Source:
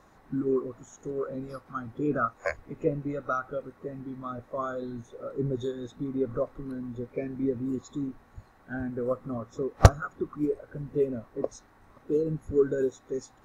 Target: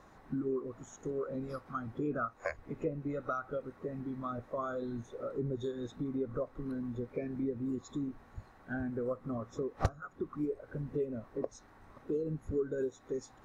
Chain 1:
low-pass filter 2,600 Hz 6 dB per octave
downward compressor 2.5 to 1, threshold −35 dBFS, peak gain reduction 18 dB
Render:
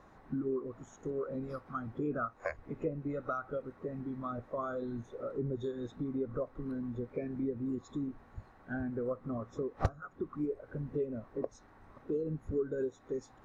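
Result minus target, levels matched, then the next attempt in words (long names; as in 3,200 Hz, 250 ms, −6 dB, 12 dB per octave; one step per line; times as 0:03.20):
8,000 Hz band −6.0 dB
low-pass filter 7,100 Hz 6 dB per octave
downward compressor 2.5 to 1, threshold −35 dBFS, peak gain reduction 18 dB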